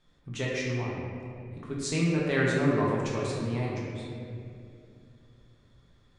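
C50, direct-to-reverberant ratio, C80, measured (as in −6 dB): −1.5 dB, −5.5 dB, 0.5 dB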